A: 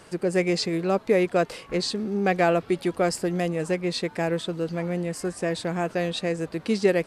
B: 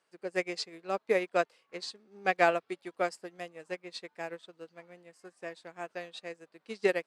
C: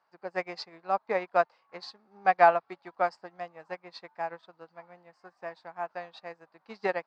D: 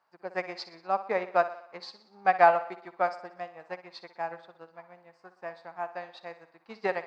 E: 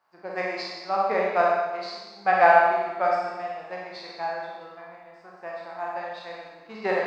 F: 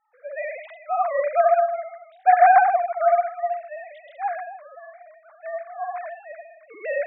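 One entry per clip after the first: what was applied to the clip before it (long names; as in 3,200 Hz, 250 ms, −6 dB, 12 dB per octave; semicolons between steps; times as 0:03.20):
meter weighting curve A; expander for the loud parts 2.5 to 1, over −37 dBFS
drawn EQ curve 150 Hz 0 dB, 260 Hz −4 dB, 440 Hz −6 dB, 840 Hz +11 dB, 3,200 Hz −8 dB, 4,700 Hz −2 dB, 11,000 Hz −30 dB
feedback echo with a high-pass in the loop 61 ms, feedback 55%, high-pass 160 Hz, level −13.5 dB
peak hold with a decay on every bin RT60 0.49 s; four-comb reverb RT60 1.2 s, combs from 29 ms, DRR −1.5 dB
three sine waves on the formant tracks; level +3 dB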